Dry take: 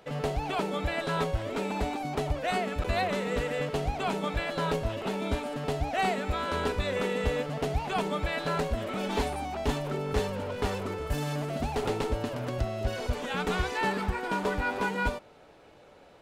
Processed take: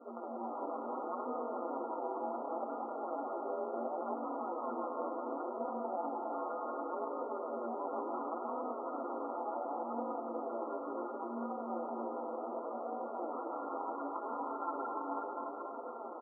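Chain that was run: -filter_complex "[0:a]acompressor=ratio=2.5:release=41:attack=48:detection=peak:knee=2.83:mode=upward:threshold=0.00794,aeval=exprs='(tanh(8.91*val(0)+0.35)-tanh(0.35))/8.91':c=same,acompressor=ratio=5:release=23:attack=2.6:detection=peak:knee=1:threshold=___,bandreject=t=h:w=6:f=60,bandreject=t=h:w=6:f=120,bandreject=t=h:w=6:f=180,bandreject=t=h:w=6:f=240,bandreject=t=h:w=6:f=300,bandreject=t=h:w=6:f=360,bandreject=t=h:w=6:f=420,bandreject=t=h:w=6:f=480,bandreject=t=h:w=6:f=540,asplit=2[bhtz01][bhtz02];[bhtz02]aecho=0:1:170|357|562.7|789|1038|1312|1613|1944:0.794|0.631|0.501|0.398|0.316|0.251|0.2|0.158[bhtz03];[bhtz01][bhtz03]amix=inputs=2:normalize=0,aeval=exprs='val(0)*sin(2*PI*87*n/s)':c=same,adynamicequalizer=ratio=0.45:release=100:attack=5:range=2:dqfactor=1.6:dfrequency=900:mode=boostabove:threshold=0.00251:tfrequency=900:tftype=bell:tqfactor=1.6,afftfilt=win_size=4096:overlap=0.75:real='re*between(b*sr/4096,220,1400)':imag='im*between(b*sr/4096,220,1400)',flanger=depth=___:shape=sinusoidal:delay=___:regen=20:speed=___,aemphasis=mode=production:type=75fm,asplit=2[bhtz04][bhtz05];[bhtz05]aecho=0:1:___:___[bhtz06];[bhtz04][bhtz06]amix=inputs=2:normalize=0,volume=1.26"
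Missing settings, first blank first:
0.0126, 6.2, 4, 0.69, 280, 0.447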